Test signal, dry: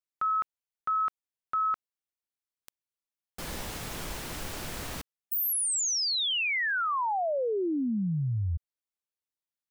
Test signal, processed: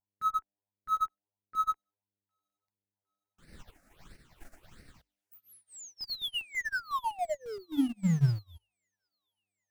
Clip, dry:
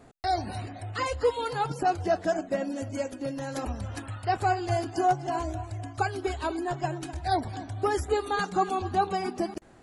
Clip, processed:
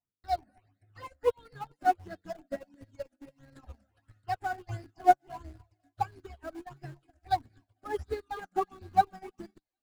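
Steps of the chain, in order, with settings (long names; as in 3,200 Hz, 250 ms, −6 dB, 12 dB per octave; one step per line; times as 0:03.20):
parametric band 160 Hz +2.5 dB 1.5 octaves
mains-hum notches 50/100/150/200/250/300 Hz
hum with harmonics 100 Hz, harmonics 10, −62 dBFS −2 dB per octave
high-shelf EQ 7,000 Hz −8.5 dB
all-pass phaser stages 8, 1.5 Hz, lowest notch 120–1,000 Hz
in parallel at −9 dB: comparator with hysteresis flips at −30 dBFS
on the sum: delay with a high-pass on its return 758 ms, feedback 71%, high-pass 2,800 Hz, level −12 dB
expander for the loud parts 2.5 to 1, over −48 dBFS
level +4 dB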